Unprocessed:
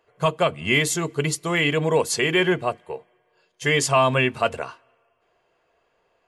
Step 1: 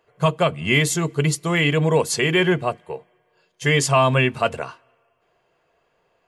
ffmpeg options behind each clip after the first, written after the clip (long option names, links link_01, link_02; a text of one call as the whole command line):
ffmpeg -i in.wav -af "equalizer=frequency=150:width=1.8:gain=5.5,volume=1dB" out.wav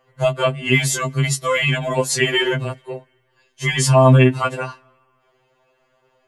ffmpeg -i in.wav -af "alimiter=limit=-11.5dB:level=0:latency=1:release=29,afftfilt=real='re*2.45*eq(mod(b,6),0)':imag='im*2.45*eq(mod(b,6),0)':win_size=2048:overlap=0.75,volume=6dB" out.wav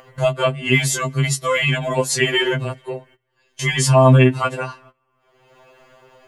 ffmpeg -i in.wav -af "agate=range=-23dB:threshold=-49dB:ratio=16:detection=peak,acompressor=mode=upward:threshold=-22dB:ratio=2.5" out.wav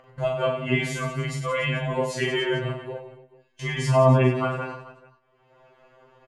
ffmpeg -i in.wav -filter_complex "[0:a]lowpass=frequency=1800:poles=1,asplit=2[link_01][link_02];[link_02]aecho=0:1:40|96|174.4|284.2|437.8:0.631|0.398|0.251|0.158|0.1[link_03];[link_01][link_03]amix=inputs=2:normalize=0,volume=-6.5dB" out.wav